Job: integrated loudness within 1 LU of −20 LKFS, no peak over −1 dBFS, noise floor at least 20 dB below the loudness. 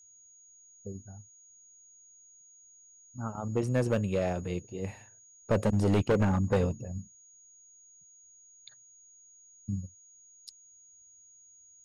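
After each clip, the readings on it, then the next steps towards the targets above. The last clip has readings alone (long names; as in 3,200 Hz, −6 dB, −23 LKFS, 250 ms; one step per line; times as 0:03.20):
share of clipped samples 0.8%; peaks flattened at −20.5 dBFS; interfering tone 6,700 Hz; level of the tone −55 dBFS; integrated loudness −30.5 LKFS; sample peak −20.5 dBFS; target loudness −20.0 LKFS
→ clipped peaks rebuilt −20.5 dBFS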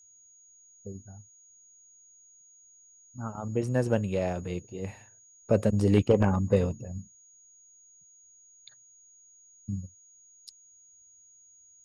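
share of clipped samples 0.0%; interfering tone 6,700 Hz; level of the tone −55 dBFS
→ notch filter 6,700 Hz, Q 30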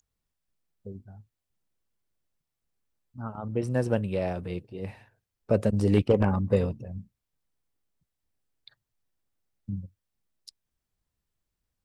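interfering tone none found; integrated loudness −28.0 LKFS; sample peak −11.5 dBFS; target loudness −20.0 LKFS
→ level +8 dB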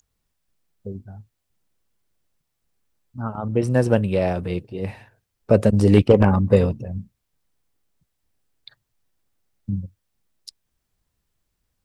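integrated loudness −20.0 LKFS; sample peak −3.5 dBFS; background noise floor −77 dBFS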